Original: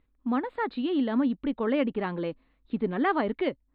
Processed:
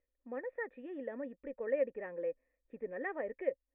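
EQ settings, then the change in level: vocal tract filter e; air absorption 280 m; bell 160 Hz -9.5 dB 2.6 oct; +4.5 dB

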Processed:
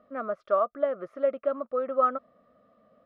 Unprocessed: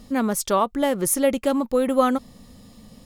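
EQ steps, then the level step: double band-pass 890 Hz, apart 0.98 oct; air absorption 330 m; +3.0 dB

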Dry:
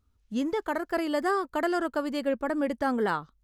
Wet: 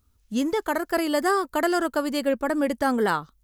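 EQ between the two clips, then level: high shelf 6200 Hz +12 dB; +4.0 dB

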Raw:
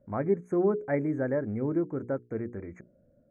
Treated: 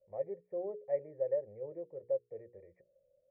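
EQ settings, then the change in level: vocal tract filter e; fixed phaser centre 630 Hz, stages 4; dynamic EQ 800 Hz, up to +5 dB, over -51 dBFS, Q 1.7; 0.0 dB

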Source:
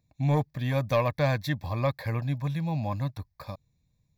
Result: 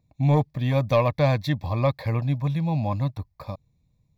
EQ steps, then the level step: bell 1600 Hz -8 dB 0.36 oct; high shelf 2900 Hz -9 dB; dynamic EQ 3800 Hz, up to +4 dB, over -52 dBFS, Q 0.91; +5.0 dB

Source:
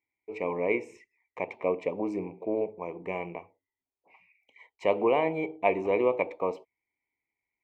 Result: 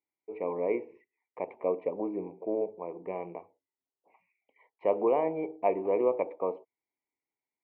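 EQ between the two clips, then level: band-pass 540 Hz, Q 0.6; air absorption 360 m; 0.0 dB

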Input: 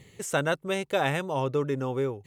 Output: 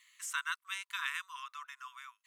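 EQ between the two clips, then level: brick-wall FIR high-pass 970 Hz; -5.0 dB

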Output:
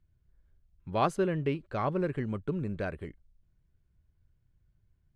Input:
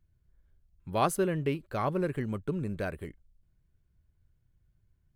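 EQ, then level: air absorption 89 m; 0.0 dB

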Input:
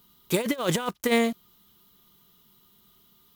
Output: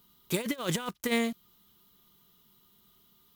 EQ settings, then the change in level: dynamic EQ 630 Hz, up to -5 dB, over -38 dBFS, Q 0.73; -3.5 dB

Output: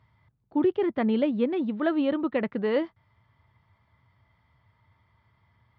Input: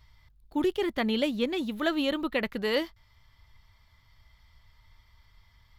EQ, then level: HPF 100 Hz 24 dB/oct; tape spacing loss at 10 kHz 36 dB; high shelf 3400 Hz -8.5 dB; +5.0 dB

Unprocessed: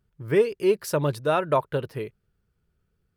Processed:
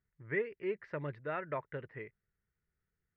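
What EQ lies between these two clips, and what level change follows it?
dynamic EQ 930 Hz, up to -4 dB, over -34 dBFS, Q 1.1; ladder low-pass 2100 Hz, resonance 75%; -3.0 dB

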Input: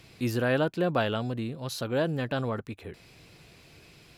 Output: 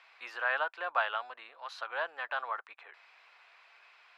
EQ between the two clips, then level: HPF 900 Hz 24 dB/oct; LPF 1500 Hz 12 dB/oct; tilt +1.5 dB/oct; +5.0 dB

